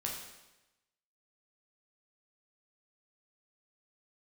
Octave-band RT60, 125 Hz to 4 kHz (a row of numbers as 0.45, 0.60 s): 1.0, 1.0, 1.0, 1.0, 1.0, 0.95 s